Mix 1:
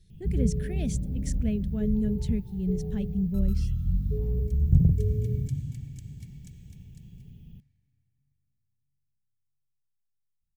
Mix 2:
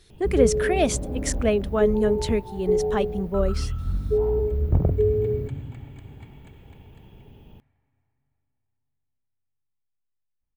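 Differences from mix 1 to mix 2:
speech: add high-shelf EQ 2,100 Hz +10 dB
second sound: add moving average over 8 samples
master: remove drawn EQ curve 100 Hz 0 dB, 170 Hz +6 dB, 300 Hz −12 dB, 1,200 Hz −29 dB, 1,700 Hz −14 dB, 6,100 Hz −3 dB

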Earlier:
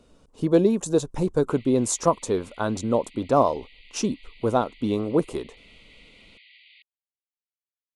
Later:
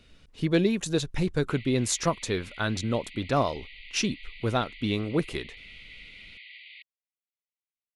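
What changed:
speech +3.0 dB
master: add octave-band graphic EQ 250/500/1,000/2,000/4,000/8,000 Hz −6/−8/−11/+10/+4/−8 dB

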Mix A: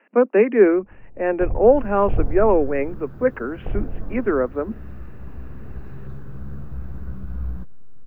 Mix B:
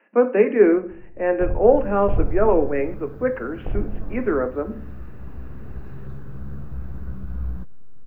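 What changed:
speech −5.0 dB
reverb: on, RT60 0.50 s

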